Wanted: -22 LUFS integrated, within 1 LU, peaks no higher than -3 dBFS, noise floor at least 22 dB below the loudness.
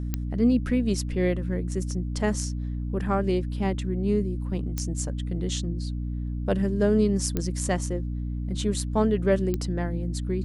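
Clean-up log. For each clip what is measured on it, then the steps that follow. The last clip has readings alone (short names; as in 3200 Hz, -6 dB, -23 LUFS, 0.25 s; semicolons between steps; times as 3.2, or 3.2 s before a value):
clicks 4; hum 60 Hz; harmonics up to 300 Hz; hum level -27 dBFS; loudness -27.0 LUFS; peak -10.0 dBFS; loudness target -22.0 LUFS
-> de-click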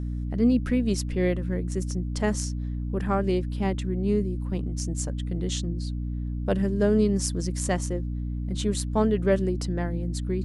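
clicks 0; hum 60 Hz; harmonics up to 300 Hz; hum level -27 dBFS
-> de-hum 60 Hz, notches 5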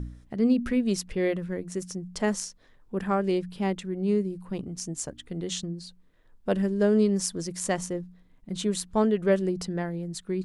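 hum none; loudness -28.5 LUFS; peak -10.0 dBFS; loudness target -22.0 LUFS
-> gain +6.5 dB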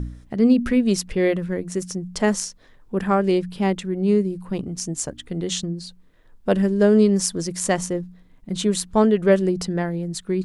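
loudness -22.0 LUFS; peak -3.5 dBFS; noise floor -51 dBFS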